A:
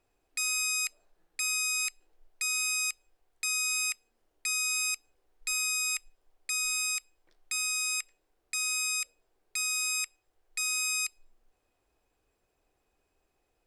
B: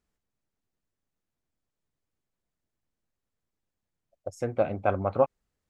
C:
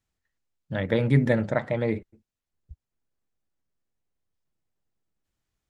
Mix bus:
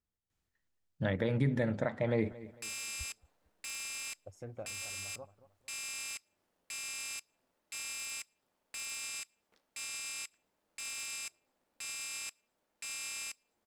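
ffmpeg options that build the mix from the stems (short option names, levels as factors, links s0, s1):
-filter_complex "[0:a]highpass=f=100:w=0.5412,highpass=f=100:w=1.3066,aeval=exprs='val(0)*sgn(sin(2*PI*130*n/s))':c=same,adelay=2250,volume=0.841[s0];[1:a]equalizer=f=93:w=1.5:g=8,alimiter=limit=0.0841:level=0:latency=1:release=310,volume=0.266,asplit=2[s1][s2];[s2]volume=0.0891[s3];[2:a]adelay=300,volume=0.794,asplit=2[s4][s5];[s5]volume=0.106[s6];[s0][s1]amix=inputs=2:normalize=0,alimiter=level_in=2.99:limit=0.0631:level=0:latency=1:release=211,volume=0.335,volume=1[s7];[s3][s6]amix=inputs=2:normalize=0,aecho=0:1:225|450|675|900:1|0.31|0.0961|0.0298[s8];[s4][s7][s8]amix=inputs=3:normalize=0,alimiter=limit=0.106:level=0:latency=1:release=382"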